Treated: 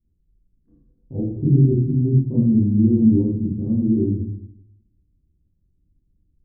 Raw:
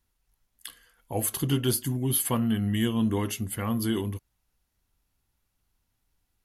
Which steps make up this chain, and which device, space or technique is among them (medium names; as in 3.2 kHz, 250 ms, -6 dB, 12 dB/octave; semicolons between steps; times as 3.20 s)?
next room (low-pass 330 Hz 24 dB/octave; reverberation RT60 0.70 s, pre-delay 22 ms, DRR -7 dB); trim +3 dB